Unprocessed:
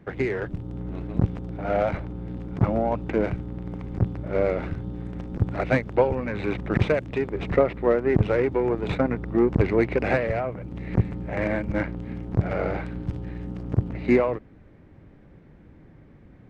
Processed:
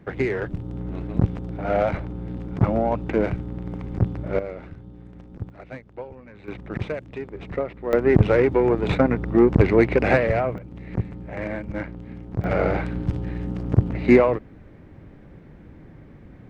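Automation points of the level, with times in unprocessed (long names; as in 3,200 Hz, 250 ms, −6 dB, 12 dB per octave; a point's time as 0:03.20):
+2 dB
from 0:04.39 −9.5 dB
from 0:05.50 −16 dB
from 0:06.48 −7 dB
from 0:07.93 +4.5 dB
from 0:10.58 −4 dB
from 0:12.44 +5 dB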